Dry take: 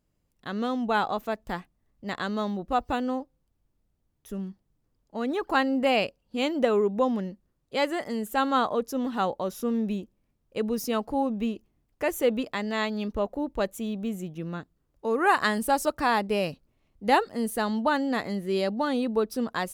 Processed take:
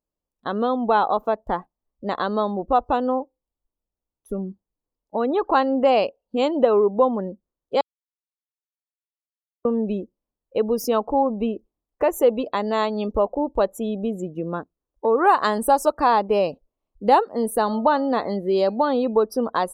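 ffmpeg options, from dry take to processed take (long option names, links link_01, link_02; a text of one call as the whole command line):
ffmpeg -i in.wav -filter_complex "[0:a]asettb=1/sr,asplit=3[link_01][link_02][link_03];[link_01]atrim=end=17.334[link_04];[link_02]atrim=start=17.33:end=19.24,asetpts=PTS-STARTPTS,afade=type=in:duration=0.004:curve=qsin,afade=type=out:start_time=1.906:duration=0.004:curve=qsin,bandreject=frequency=313:width_type=h:width=4,bandreject=frequency=626:width_type=h:width=4,bandreject=frequency=939:width_type=h:width=4,bandreject=frequency=1252:width_type=h:width=4,bandreject=frequency=1565:width_type=h:width=4,bandreject=frequency=1878:width_type=h:width=4,bandreject=frequency=2191:width_type=h:width=4,bandreject=frequency=2504:width_type=h:width=4,bandreject=frequency=2817:width_type=h:width=4,bandreject=frequency=3130:width_type=h:width=4,bandreject=frequency=3443:width_type=h:width=4,bandreject=frequency=3756:width_type=h:width=4,bandreject=frequency=4069:width_type=h:width=4,bandreject=frequency=4382:width_type=h:width=4,bandreject=frequency=4695:width_type=h:width=4,bandreject=frequency=5008:width_type=h:width=4,bandreject=frequency=5321:width_type=h:width=4,bandreject=frequency=5634:width_type=h:width=4,bandreject=frequency=5947:width_type=h:width=4,bandreject=frequency=6260:width_type=h:width=4,bandreject=frequency=6573:width_type=h:width=4,bandreject=frequency=6886:width_type=h:width=4,bandreject=frequency=7199:width_type=h:width=4,bandreject=frequency=7512:width_type=h:width=4,bandreject=frequency=7825:width_type=h:width=4,bandreject=frequency=8138:width_type=h:width=4,bandreject=frequency=8451:width_type=h:width=4,bandreject=frequency=8764:width_type=h:width=4,bandreject=frequency=9077:width_type=h:width=4,bandreject=frequency=9390:width_type=h:width=4,bandreject=frequency=9703:width_type=h:width=4,bandreject=frequency=10016:width_type=h:width=4,bandreject=frequency=10329:width_type=h:width=4,bandreject=frequency=10642:width_type=h:width=4,bandreject=frequency=10955:width_type=h:width=4,bandreject=frequency=11268:width_type=h:width=4[link_05];[link_03]atrim=start=19.236[link_06];[link_04][link_05]acrossfade=duration=0.004:curve1=hsin:curve2=qsin[link_07];[link_07][link_06]acrossfade=duration=0.004:curve1=qsin:curve2=hsin,asplit=3[link_08][link_09][link_10];[link_08]atrim=end=7.81,asetpts=PTS-STARTPTS,afade=type=out:start_time=7.806:duration=0.004:curve=hsin[link_11];[link_09]atrim=start=7.81:end=9.65,asetpts=PTS-STARTPTS,volume=0[link_12];[link_10]atrim=start=9.65,asetpts=PTS-STARTPTS,afade=type=in:duration=0.004:curve=hsin[link_13];[link_11][link_12][link_13]concat=n=3:v=0:a=1,afftdn=noise_reduction=23:noise_floor=-44,equalizer=frequency=125:width_type=o:width=1:gain=-9,equalizer=frequency=500:width_type=o:width=1:gain=5,equalizer=frequency=1000:width_type=o:width=1:gain=7,equalizer=frequency=2000:width_type=o:width=1:gain=-8,acompressor=threshold=-36dB:ratio=1.5,volume=9dB" out.wav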